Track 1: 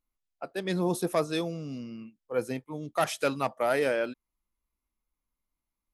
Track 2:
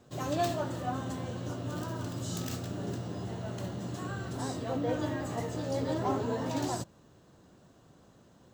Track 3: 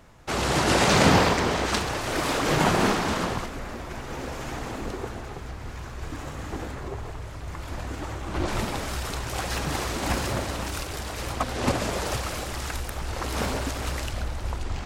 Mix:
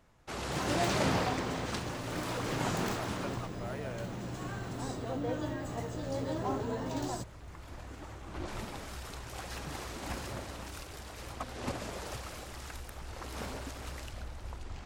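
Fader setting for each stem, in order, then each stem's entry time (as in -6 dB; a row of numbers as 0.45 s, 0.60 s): -17.0 dB, -3.5 dB, -12.5 dB; 0.00 s, 0.40 s, 0.00 s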